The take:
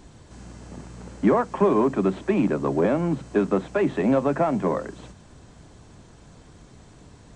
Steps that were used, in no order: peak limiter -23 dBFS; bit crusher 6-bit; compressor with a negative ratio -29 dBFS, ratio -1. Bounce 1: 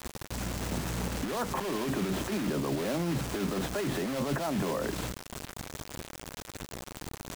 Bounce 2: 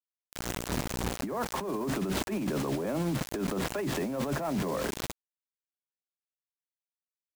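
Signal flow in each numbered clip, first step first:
compressor with a negative ratio > bit crusher > peak limiter; bit crusher > compressor with a negative ratio > peak limiter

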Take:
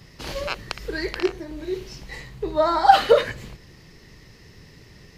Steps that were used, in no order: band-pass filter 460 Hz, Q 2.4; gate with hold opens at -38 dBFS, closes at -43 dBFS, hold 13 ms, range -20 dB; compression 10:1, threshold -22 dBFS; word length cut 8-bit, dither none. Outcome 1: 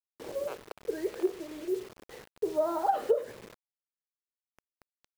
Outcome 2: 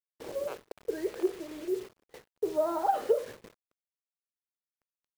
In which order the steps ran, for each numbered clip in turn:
gate with hold > band-pass filter > word length cut > compression; band-pass filter > compression > word length cut > gate with hold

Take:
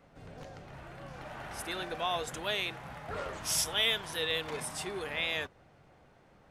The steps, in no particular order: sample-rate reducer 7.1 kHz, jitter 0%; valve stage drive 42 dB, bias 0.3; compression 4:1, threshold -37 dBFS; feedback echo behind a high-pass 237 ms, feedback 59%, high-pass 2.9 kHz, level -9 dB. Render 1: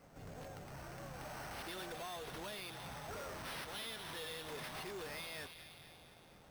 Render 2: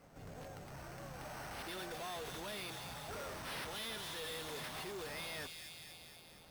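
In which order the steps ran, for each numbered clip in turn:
compression > feedback echo behind a high-pass > valve stage > sample-rate reducer; sample-rate reducer > feedback echo behind a high-pass > valve stage > compression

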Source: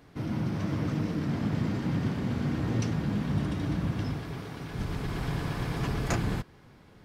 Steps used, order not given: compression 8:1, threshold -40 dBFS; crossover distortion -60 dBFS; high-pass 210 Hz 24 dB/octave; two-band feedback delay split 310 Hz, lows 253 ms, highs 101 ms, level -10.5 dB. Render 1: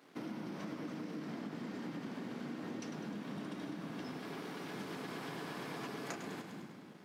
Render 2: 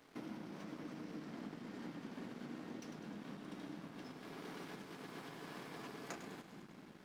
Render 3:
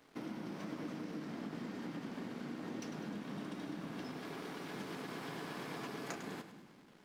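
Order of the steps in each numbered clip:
two-band feedback delay > crossover distortion > high-pass > compression; two-band feedback delay > compression > high-pass > crossover distortion; high-pass > compression > crossover distortion > two-band feedback delay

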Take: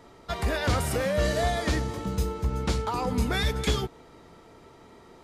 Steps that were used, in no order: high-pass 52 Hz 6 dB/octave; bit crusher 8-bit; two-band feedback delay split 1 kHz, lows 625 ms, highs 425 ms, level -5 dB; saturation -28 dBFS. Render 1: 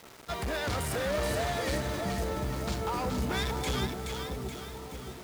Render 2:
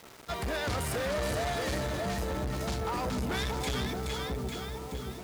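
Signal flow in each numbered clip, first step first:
saturation > two-band feedback delay > bit crusher > high-pass; two-band feedback delay > bit crusher > saturation > high-pass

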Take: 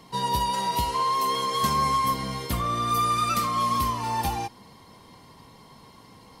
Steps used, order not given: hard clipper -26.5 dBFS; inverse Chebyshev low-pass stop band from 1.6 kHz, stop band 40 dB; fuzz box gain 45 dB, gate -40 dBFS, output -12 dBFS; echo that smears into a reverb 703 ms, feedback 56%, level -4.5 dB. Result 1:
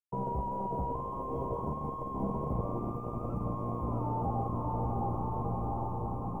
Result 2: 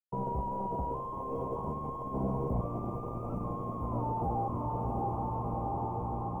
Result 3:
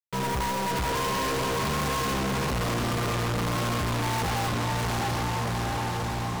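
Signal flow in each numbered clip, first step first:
echo that smears into a reverb > fuzz box > hard clipper > inverse Chebyshev low-pass; fuzz box > echo that smears into a reverb > hard clipper > inverse Chebyshev low-pass; inverse Chebyshev low-pass > fuzz box > echo that smears into a reverb > hard clipper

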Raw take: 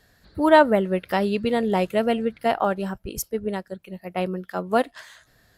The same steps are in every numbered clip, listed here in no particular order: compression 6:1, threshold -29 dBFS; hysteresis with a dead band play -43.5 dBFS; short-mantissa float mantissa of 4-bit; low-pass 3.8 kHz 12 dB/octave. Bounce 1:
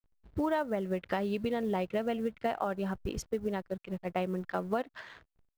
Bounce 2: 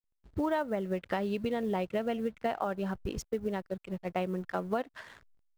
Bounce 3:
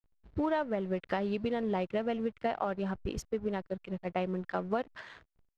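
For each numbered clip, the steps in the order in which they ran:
hysteresis with a dead band > low-pass > compression > short-mantissa float; low-pass > hysteresis with a dead band > compression > short-mantissa float; compression > hysteresis with a dead band > short-mantissa float > low-pass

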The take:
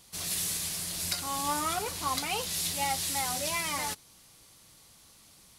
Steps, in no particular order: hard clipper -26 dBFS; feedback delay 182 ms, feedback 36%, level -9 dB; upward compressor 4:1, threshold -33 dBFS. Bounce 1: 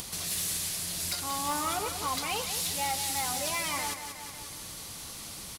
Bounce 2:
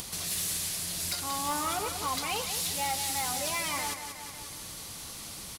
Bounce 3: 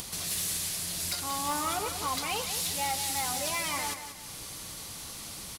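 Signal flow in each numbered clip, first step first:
hard clipper > feedback delay > upward compressor; feedback delay > hard clipper > upward compressor; hard clipper > upward compressor > feedback delay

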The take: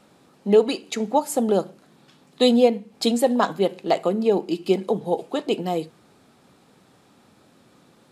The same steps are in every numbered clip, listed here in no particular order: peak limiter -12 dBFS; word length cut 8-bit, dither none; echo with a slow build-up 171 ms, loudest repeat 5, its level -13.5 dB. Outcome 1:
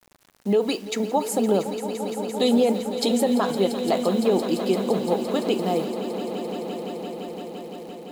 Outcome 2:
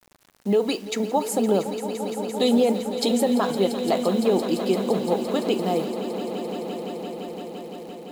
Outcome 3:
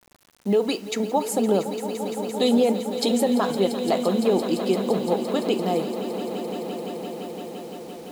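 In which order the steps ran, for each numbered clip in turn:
word length cut > peak limiter > echo with a slow build-up; peak limiter > word length cut > echo with a slow build-up; peak limiter > echo with a slow build-up > word length cut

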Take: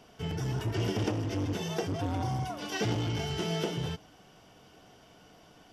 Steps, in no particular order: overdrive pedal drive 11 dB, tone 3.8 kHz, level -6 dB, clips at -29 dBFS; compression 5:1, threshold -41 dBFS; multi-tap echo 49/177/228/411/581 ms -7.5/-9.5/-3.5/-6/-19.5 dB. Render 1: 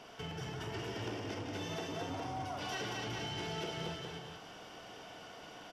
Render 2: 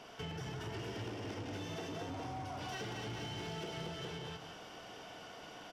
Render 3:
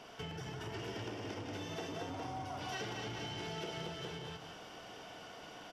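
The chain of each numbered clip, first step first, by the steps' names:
compression > multi-tap echo > overdrive pedal; multi-tap echo > overdrive pedal > compression; multi-tap echo > compression > overdrive pedal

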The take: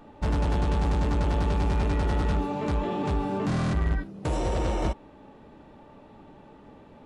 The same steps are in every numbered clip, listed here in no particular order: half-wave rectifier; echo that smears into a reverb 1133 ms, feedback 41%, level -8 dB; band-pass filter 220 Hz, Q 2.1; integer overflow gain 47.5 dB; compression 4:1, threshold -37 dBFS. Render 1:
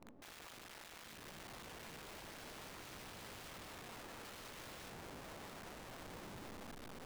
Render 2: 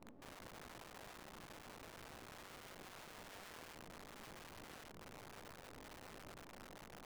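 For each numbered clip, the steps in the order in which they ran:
band-pass filter > half-wave rectifier > compression > echo that smears into a reverb > integer overflow; echo that smears into a reverb > compression > band-pass filter > half-wave rectifier > integer overflow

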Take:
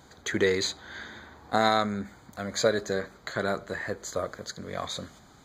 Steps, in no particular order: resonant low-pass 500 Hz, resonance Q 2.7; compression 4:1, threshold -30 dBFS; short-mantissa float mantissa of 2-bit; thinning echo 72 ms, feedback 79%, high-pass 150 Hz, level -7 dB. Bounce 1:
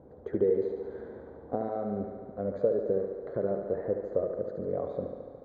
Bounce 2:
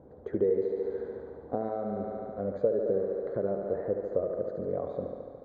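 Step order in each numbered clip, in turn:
compression > thinning echo > short-mantissa float > resonant low-pass; thinning echo > short-mantissa float > compression > resonant low-pass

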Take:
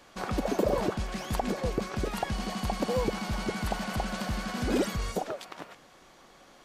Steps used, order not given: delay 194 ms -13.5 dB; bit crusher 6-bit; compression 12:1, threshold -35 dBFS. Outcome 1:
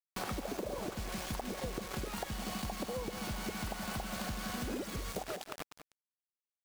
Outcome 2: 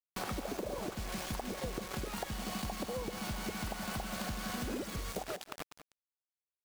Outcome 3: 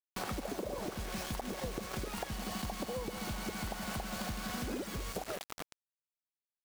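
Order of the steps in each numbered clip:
bit crusher > delay > compression; bit crusher > compression > delay; delay > bit crusher > compression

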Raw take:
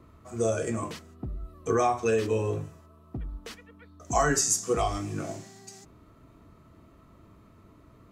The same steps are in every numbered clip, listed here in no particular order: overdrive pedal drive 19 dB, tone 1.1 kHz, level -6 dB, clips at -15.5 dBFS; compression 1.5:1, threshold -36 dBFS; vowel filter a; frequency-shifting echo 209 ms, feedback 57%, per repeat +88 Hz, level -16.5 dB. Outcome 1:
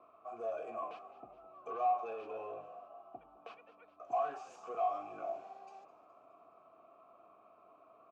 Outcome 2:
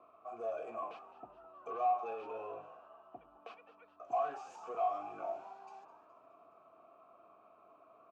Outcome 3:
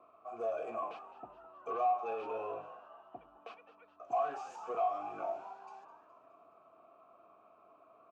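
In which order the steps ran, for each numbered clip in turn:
overdrive pedal > compression > frequency-shifting echo > vowel filter; overdrive pedal > compression > vowel filter > frequency-shifting echo; overdrive pedal > vowel filter > frequency-shifting echo > compression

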